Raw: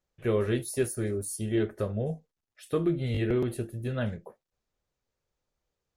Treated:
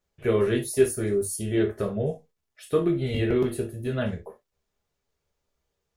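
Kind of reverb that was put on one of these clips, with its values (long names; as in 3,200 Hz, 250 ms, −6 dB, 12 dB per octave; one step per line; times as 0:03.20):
reverb whose tail is shaped and stops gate 90 ms falling, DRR 2.5 dB
level +2.5 dB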